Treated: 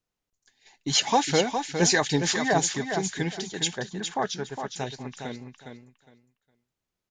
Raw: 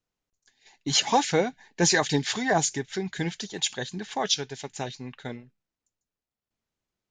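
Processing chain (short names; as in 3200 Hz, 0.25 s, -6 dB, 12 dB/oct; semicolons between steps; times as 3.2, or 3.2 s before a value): 3.73–4.76 resonant high shelf 2000 Hz -9 dB, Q 1.5; feedback echo 0.41 s, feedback 20%, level -7 dB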